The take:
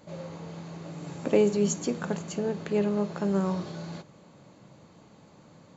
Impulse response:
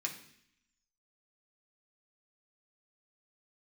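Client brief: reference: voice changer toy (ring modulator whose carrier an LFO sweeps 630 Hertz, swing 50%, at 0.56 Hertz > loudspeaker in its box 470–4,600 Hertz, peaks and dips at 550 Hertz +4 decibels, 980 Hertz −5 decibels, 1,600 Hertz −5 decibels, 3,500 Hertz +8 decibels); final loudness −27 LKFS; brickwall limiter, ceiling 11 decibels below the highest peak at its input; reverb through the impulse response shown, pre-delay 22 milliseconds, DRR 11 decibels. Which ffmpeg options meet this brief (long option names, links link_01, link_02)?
-filter_complex "[0:a]alimiter=limit=-21dB:level=0:latency=1,asplit=2[link_01][link_02];[1:a]atrim=start_sample=2205,adelay=22[link_03];[link_02][link_03]afir=irnorm=-1:irlink=0,volume=-12.5dB[link_04];[link_01][link_04]amix=inputs=2:normalize=0,aeval=exprs='val(0)*sin(2*PI*630*n/s+630*0.5/0.56*sin(2*PI*0.56*n/s))':channel_layout=same,highpass=470,equalizer=frequency=550:width_type=q:width=4:gain=4,equalizer=frequency=980:width_type=q:width=4:gain=-5,equalizer=frequency=1600:width_type=q:width=4:gain=-5,equalizer=frequency=3500:width_type=q:width=4:gain=8,lowpass=frequency=4600:width=0.5412,lowpass=frequency=4600:width=1.3066,volume=10dB"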